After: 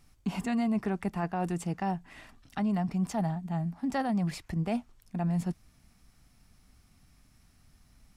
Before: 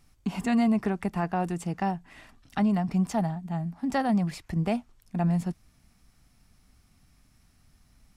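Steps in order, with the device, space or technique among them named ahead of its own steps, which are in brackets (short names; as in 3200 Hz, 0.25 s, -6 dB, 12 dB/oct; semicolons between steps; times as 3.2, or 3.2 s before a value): compression on the reversed sound (reverse; compressor, threshold -26 dBFS, peak gain reduction 6 dB; reverse)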